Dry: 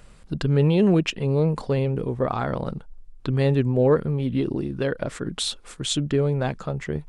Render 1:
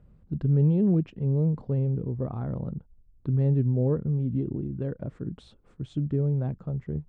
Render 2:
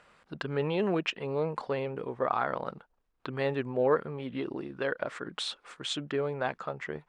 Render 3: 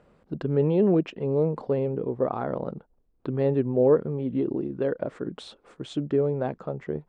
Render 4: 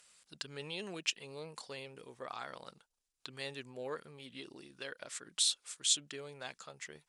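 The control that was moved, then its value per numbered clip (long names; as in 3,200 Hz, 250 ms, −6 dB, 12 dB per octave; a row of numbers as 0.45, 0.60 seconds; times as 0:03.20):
resonant band-pass, frequency: 110, 1,300, 440, 7,600 Hertz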